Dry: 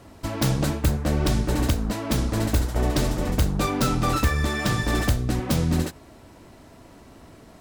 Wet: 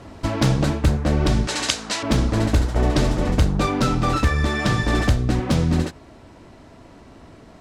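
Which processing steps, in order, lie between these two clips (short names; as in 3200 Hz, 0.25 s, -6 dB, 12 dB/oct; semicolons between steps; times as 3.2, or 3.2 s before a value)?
1.47–2.03 weighting filter ITU-R 468; vocal rider within 4 dB 0.5 s; air absorption 61 m; gain +4 dB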